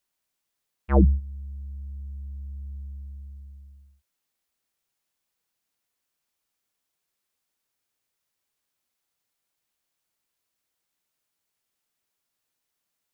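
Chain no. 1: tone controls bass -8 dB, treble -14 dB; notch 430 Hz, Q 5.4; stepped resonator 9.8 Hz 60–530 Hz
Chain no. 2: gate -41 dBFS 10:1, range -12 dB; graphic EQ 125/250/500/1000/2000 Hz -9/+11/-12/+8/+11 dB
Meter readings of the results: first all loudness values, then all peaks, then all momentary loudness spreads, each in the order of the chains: -39.0, -22.5 LUFS; -23.0, -6.0 dBFS; 22, 20 LU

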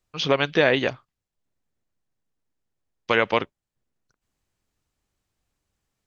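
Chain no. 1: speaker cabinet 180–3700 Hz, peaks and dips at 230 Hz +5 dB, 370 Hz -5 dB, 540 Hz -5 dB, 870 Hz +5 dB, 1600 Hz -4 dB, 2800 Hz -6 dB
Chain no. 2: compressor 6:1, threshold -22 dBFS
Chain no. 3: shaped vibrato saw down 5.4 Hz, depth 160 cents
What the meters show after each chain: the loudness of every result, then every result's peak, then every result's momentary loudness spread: -24.5, -28.5, -22.0 LUFS; -5.5, -8.0, -4.5 dBFS; 13, 11, 13 LU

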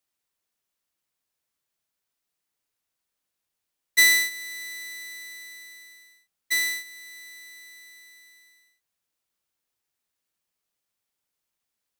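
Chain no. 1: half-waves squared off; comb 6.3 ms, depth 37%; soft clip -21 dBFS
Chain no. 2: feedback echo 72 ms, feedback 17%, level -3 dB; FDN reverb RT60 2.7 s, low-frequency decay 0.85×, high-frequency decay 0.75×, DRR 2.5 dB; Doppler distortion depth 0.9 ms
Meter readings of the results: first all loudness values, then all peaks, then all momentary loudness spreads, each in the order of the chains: -27.5, -22.0 LUFS; -21.0, -7.5 dBFS; 23, 23 LU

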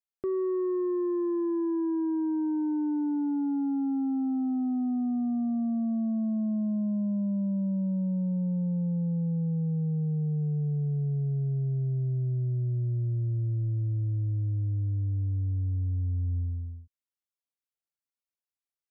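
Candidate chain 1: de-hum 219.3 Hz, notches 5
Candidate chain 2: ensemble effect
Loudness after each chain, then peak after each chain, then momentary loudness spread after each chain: -29.5, -32.5 LUFS; -24.0, -23.0 dBFS; 1, 6 LU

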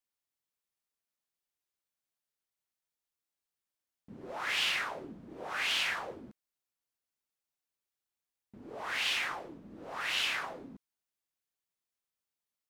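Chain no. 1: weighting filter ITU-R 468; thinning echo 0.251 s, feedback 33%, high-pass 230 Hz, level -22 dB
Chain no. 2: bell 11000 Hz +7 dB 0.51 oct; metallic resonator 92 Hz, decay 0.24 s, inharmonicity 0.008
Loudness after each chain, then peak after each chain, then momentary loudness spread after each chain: -24.5, -40.5 LUFS; -10.0, -27.0 dBFS; 20, 20 LU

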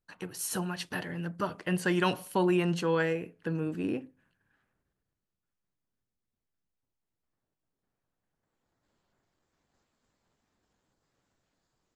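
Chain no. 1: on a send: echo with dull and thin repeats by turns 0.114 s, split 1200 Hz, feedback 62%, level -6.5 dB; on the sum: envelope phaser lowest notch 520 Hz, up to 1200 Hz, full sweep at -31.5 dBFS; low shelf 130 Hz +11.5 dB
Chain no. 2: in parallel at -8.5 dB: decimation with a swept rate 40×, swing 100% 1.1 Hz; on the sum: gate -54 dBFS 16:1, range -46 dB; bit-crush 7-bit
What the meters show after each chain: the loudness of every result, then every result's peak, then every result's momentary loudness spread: -29.5, -29.5 LUFS; -15.5, -14.5 dBFS; 11, 10 LU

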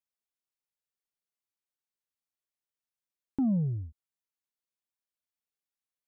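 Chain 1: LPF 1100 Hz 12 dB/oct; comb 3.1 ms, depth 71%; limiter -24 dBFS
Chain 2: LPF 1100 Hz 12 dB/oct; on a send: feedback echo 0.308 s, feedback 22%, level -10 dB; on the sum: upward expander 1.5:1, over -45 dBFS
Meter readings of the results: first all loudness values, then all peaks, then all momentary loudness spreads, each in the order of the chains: -34.5, -31.5 LUFS; -24.0, -23.0 dBFS; 11, 16 LU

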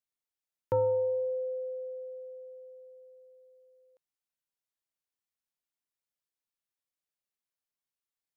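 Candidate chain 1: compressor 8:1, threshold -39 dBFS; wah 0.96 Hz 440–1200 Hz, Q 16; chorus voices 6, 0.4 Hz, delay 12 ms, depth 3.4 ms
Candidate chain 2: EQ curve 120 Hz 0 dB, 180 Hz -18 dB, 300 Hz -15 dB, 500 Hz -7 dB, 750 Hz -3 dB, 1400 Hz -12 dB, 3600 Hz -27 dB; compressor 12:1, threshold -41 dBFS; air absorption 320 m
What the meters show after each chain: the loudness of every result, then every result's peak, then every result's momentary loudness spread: -54.0, -47.0 LUFS; -37.0, -30.5 dBFS; 17, 18 LU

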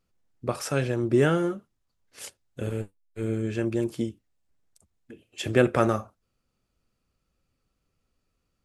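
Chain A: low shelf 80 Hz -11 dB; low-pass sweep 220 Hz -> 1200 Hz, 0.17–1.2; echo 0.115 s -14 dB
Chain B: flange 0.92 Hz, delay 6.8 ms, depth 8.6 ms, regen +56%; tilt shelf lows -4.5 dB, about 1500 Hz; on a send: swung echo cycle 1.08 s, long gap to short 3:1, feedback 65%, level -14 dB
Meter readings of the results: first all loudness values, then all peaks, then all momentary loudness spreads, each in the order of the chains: -26.0, -36.0 LUFS; -5.0, -12.0 dBFS; 16, 19 LU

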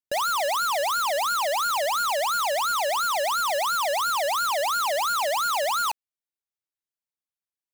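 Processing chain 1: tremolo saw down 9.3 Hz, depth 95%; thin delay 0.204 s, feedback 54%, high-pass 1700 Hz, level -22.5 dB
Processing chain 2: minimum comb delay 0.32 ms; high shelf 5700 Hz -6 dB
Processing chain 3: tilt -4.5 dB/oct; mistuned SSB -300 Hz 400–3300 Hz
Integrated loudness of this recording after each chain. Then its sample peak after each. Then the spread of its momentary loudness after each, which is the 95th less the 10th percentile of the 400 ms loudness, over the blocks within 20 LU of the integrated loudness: -28.5, -27.0, -25.0 LUFS; -23.5, -19.5, -17.5 dBFS; 1, 1, 1 LU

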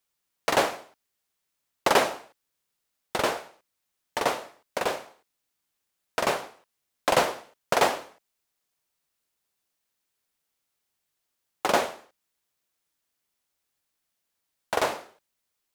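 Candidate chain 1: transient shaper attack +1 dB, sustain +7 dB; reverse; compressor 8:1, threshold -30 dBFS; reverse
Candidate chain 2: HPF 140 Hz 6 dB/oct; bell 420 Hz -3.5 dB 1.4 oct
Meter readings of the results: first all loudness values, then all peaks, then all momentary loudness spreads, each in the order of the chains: -36.0, -29.0 LUFS; -17.0, -7.5 dBFS; 11, 14 LU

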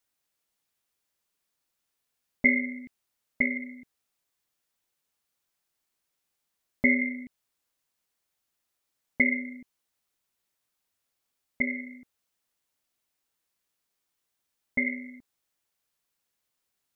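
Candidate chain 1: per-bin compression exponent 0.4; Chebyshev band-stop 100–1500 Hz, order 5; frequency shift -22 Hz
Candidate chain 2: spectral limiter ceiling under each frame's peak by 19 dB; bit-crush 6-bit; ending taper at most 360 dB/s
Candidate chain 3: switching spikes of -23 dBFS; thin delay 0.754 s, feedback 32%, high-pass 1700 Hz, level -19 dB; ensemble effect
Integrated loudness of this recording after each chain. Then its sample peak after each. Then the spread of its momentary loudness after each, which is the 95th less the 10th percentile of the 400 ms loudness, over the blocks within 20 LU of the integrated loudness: -24.5, -28.0, -27.5 LUFS; -7.5, -7.5, -13.0 dBFS; 15, 15, 3 LU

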